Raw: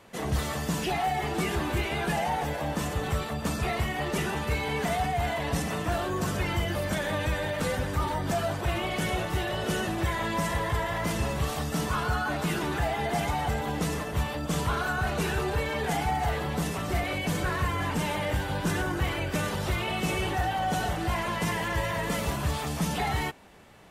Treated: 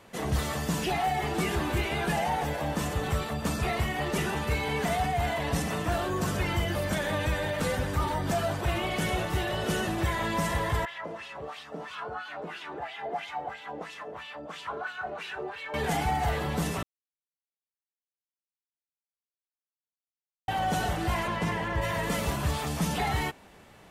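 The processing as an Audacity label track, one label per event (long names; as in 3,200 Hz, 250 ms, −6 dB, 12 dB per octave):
10.850000	15.740000	LFO wah 3 Hz 460–3,300 Hz, Q 2.2
16.830000	20.480000	silence
21.260000	21.810000	low-pass filter 3,700 Hz → 1,600 Hz 6 dB per octave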